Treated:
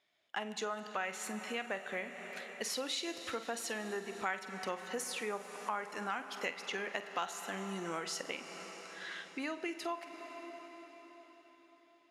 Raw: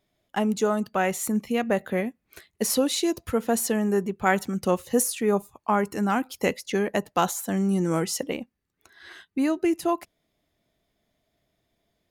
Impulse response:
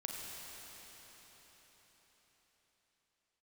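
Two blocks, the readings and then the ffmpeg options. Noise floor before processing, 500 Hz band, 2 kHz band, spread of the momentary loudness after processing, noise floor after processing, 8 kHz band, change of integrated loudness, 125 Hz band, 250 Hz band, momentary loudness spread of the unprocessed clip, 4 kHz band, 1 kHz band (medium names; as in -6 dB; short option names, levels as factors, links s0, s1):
-77 dBFS, -15.5 dB, -7.0 dB, 10 LU, -65 dBFS, -13.0 dB, -14.0 dB, -21.5 dB, -19.5 dB, 6 LU, -6.5 dB, -12.0 dB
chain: -filter_complex "[0:a]lowpass=2400,aderivative,asplit=2[s0][s1];[1:a]atrim=start_sample=2205,adelay=47[s2];[s1][s2]afir=irnorm=-1:irlink=0,volume=0.335[s3];[s0][s3]amix=inputs=2:normalize=0,acompressor=threshold=0.002:ratio=2.5,volume=5.62"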